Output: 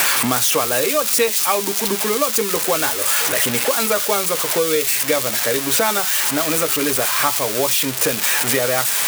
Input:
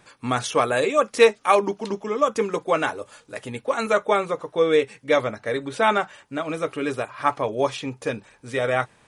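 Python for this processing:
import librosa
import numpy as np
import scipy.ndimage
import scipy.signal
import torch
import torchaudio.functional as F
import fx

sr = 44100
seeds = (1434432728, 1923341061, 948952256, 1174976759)

y = x + 0.5 * 10.0 ** (-9.5 / 20.0) * np.diff(np.sign(x), prepend=np.sign(x[:1]))
y = fx.band_squash(y, sr, depth_pct=100)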